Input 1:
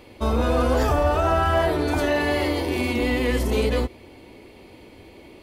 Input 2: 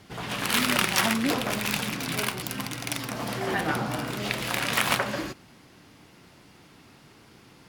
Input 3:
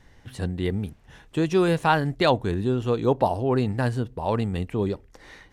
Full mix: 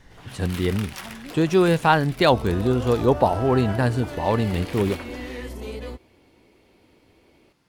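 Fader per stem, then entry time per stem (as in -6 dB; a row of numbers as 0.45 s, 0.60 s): -12.0 dB, -13.5 dB, +3.0 dB; 2.10 s, 0.00 s, 0.00 s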